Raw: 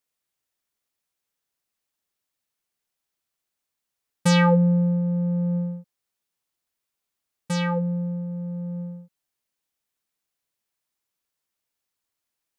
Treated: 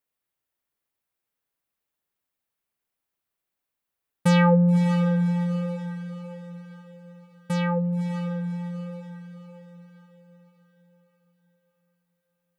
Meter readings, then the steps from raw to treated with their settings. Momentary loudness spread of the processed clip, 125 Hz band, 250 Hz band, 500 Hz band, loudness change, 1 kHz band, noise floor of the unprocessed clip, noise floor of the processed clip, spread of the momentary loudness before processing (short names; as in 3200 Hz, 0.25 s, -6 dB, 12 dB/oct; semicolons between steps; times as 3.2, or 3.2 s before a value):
22 LU, +0.5 dB, +0.5 dB, +0.5 dB, -0.5 dB, 0.0 dB, -84 dBFS, -85 dBFS, 15 LU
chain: bell 6000 Hz -8.5 dB 1.7 oct; diffused feedback echo 0.575 s, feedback 46%, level -9 dB